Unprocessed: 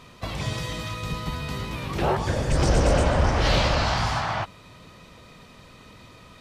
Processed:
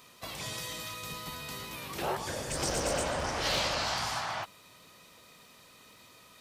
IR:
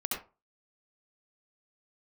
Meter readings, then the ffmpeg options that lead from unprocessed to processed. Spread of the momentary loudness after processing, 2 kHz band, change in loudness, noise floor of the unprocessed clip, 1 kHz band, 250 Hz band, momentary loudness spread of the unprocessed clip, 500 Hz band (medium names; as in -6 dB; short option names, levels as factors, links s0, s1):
10 LU, -6.5 dB, -8.5 dB, -49 dBFS, -8.0 dB, -13.0 dB, 10 LU, -9.5 dB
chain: -af "aemphasis=mode=production:type=bsi,volume=0.398"